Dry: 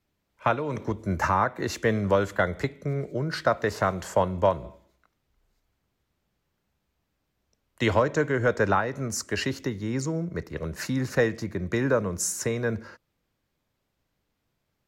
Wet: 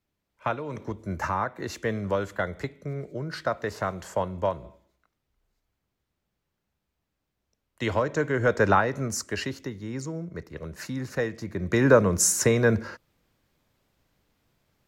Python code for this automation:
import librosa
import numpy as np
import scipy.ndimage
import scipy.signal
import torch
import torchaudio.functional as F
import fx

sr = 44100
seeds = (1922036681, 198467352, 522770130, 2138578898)

y = fx.gain(x, sr, db=fx.line((7.83, -4.5), (8.83, 3.5), (9.61, -5.0), (11.34, -5.0), (11.92, 6.5)))